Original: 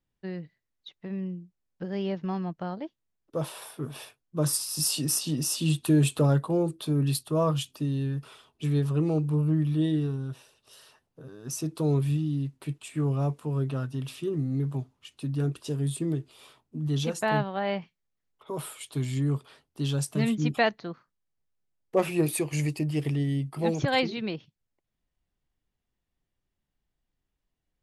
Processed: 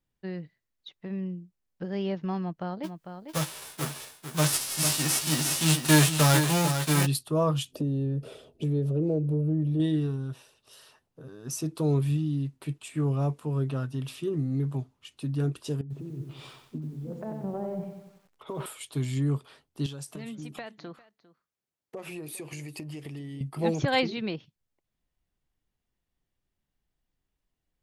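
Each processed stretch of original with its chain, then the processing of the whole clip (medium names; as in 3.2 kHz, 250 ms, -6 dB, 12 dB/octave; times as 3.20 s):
2.83–7.05 s: formants flattened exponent 0.3 + doubling 13 ms -8 dB + delay 449 ms -8 dB
7.72–9.80 s: resonant low shelf 750 Hz +10 dB, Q 3 + compression 2.5:1, threshold -30 dBFS
15.81–18.66 s: low-pass that closes with the level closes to 400 Hz, closed at -25.5 dBFS + compressor with a negative ratio -36 dBFS + bit-crushed delay 92 ms, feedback 55%, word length 10-bit, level -6 dB
19.86–23.41 s: high-pass 190 Hz 6 dB/octave + compression 12:1, threshold -35 dBFS + delay 401 ms -19 dB
whole clip: none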